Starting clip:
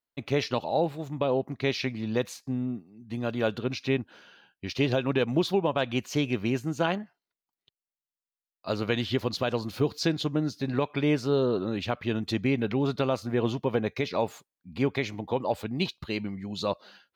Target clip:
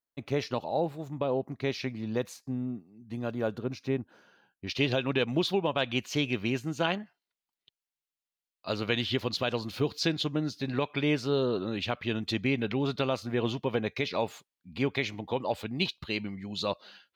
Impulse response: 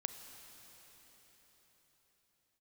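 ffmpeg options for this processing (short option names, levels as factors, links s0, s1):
-af "asetnsamples=n=441:p=0,asendcmd='3.33 equalizer g -10;4.67 equalizer g 6',equalizer=f=3100:t=o:w=1.5:g=-3.5,volume=0.708"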